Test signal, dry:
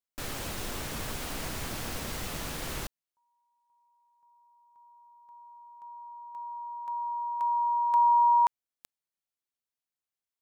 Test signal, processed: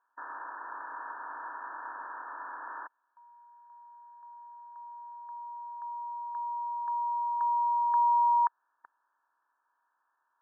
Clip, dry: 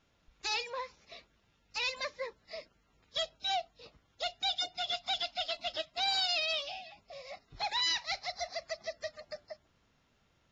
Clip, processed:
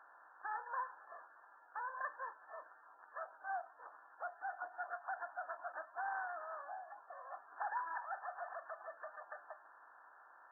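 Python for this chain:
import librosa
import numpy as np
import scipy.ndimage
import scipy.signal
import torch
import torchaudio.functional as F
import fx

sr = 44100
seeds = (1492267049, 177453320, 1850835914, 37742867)

y = fx.bin_compress(x, sr, power=0.6)
y = fx.brickwall_bandpass(y, sr, low_hz=260.0, high_hz=1800.0)
y = fx.low_shelf_res(y, sr, hz=720.0, db=-14.0, q=1.5)
y = F.gain(torch.from_numpy(y), -3.0).numpy()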